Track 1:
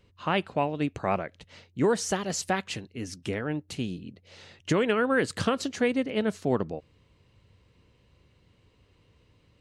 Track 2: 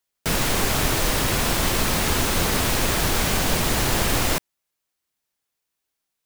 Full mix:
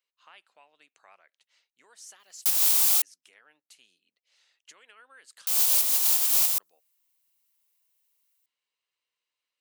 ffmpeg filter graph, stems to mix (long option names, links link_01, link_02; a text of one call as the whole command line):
ffmpeg -i stem1.wav -i stem2.wav -filter_complex "[0:a]acompressor=threshold=-27dB:ratio=3,volume=-19dB,asplit=2[link_01][link_02];[1:a]equalizer=frequency=1700:width=1.1:gain=-13,adelay=2200,volume=-4.5dB,asplit=3[link_03][link_04][link_05];[link_03]atrim=end=3.02,asetpts=PTS-STARTPTS,afade=type=out:start_time=3.016:duration=0.004:curve=hsin[link_06];[link_04]atrim=start=3.02:end=5.47,asetpts=PTS-STARTPTS,volume=0[link_07];[link_05]atrim=start=5.47,asetpts=PTS-STARTPTS,afade=type=in:duration=0.004:curve=hsin[link_08];[link_06][link_07][link_08]concat=n=3:v=0:a=1[link_09];[link_02]apad=whole_len=373043[link_10];[link_09][link_10]sidechaincompress=threshold=-51dB:ratio=4:attack=31:release=111[link_11];[link_01][link_11]amix=inputs=2:normalize=0,highpass=1100,aemphasis=mode=production:type=50kf" out.wav